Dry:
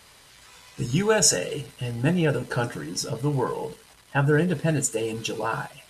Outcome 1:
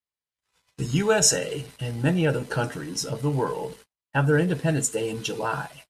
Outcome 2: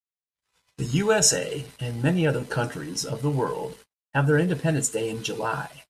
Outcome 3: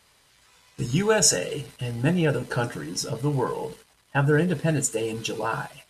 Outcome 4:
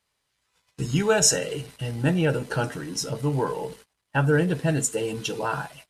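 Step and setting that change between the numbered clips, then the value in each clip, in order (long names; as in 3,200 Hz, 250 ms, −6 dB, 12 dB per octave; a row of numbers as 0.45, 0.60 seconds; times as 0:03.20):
noise gate, range: −45, −59, −8, −24 decibels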